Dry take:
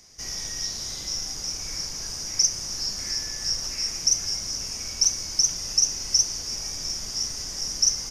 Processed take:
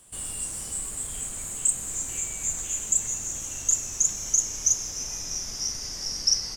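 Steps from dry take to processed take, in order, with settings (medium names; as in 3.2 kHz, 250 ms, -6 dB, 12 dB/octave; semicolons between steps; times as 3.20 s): gliding tape speed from 152% -> 95%; trim -1.5 dB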